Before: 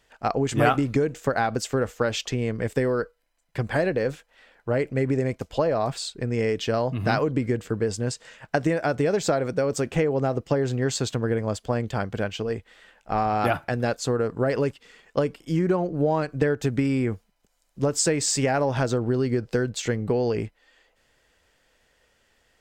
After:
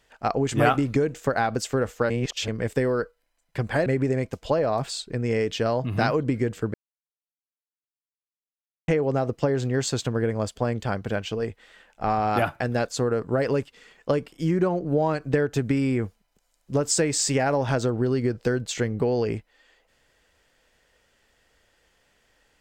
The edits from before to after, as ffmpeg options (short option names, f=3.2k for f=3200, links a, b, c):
-filter_complex "[0:a]asplit=6[a][b][c][d][e][f];[a]atrim=end=2.102[g];[b]atrim=start=2.098:end=2.482,asetpts=PTS-STARTPTS,areverse[h];[c]atrim=start=2.478:end=3.862[i];[d]atrim=start=4.938:end=7.82,asetpts=PTS-STARTPTS,afade=t=out:st=2.878:d=0.004:c=hsin[j];[e]atrim=start=7.82:end=9.96,asetpts=PTS-STARTPTS,volume=0[k];[f]atrim=start=9.96,asetpts=PTS-STARTPTS,afade=t=in:d=0.004:c=hsin[l];[g][h]acrossfade=d=0.004:c1=hsin:c2=hsin[m];[m][i]acrossfade=d=0.004:c1=hsin:c2=hsin[n];[j][k][l]concat=n=3:v=0:a=1[o];[n][o]acrossfade=d=0.004:c1=hsin:c2=hsin"